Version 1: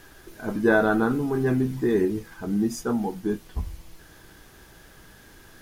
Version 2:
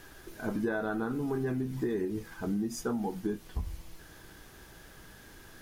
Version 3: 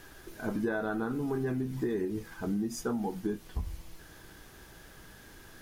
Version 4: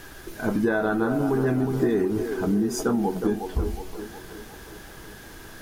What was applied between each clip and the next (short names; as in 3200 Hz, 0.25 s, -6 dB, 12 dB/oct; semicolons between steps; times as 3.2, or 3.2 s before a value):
compressor 12:1, threshold -26 dBFS, peak gain reduction 12 dB; gain -2 dB
nothing audible
band-limited delay 0.364 s, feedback 53%, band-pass 610 Hz, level -5.5 dB; gain +8.5 dB